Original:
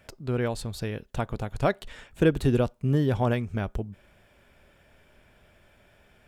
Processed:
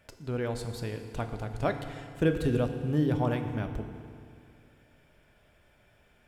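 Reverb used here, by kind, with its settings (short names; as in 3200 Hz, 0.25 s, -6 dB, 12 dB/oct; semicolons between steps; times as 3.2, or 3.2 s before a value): FDN reverb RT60 2.3 s, low-frequency decay 1.1×, high-frequency decay 0.85×, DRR 6 dB; gain -5 dB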